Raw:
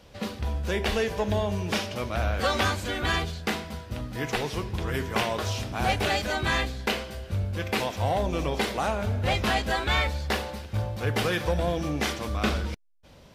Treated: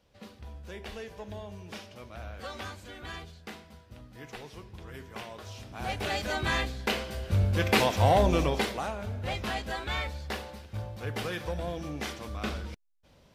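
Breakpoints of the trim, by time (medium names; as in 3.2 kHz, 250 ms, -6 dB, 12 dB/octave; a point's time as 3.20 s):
5.44 s -15 dB
6.31 s -3 dB
6.82 s -3 dB
7.45 s +4 dB
8.32 s +4 dB
8.92 s -8 dB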